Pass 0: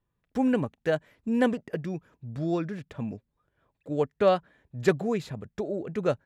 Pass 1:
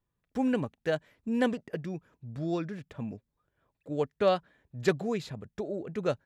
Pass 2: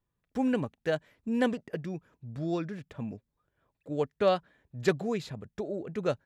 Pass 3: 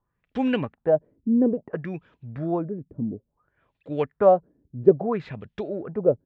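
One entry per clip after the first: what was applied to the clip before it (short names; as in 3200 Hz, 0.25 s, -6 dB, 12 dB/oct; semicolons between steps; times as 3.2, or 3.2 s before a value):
dynamic EQ 4500 Hz, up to +5 dB, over -49 dBFS, Q 0.86; gain -3.5 dB
nothing audible
LFO low-pass sine 0.59 Hz 290–3300 Hz; gain +4 dB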